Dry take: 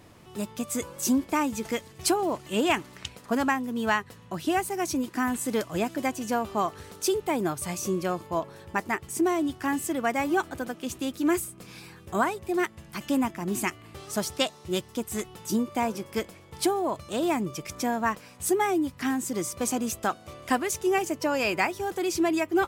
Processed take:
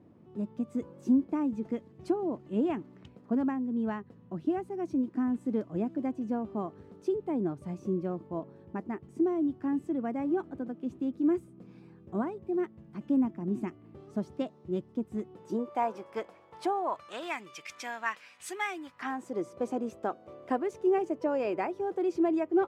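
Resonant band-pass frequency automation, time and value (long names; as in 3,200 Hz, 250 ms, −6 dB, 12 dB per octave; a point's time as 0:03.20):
resonant band-pass, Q 1.2
0:15.21 240 Hz
0:15.78 800 Hz
0:16.72 800 Hz
0:17.40 2,300 Hz
0:18.69 2,300 Hz
0:19.43 440 Hz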